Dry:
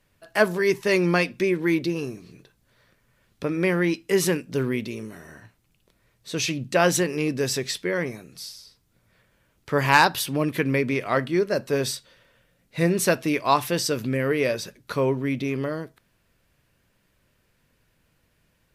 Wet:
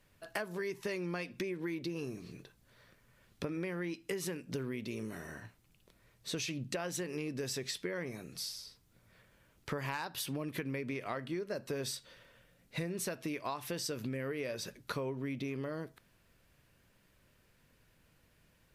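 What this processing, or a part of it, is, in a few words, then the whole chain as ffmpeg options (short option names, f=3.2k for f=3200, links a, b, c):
serial compression, leveller first: -af "acompressor=threshold=-23dB:ratio=2.5,acompressor=threshold=-34dB:ratio=6,volume=-1.5dB"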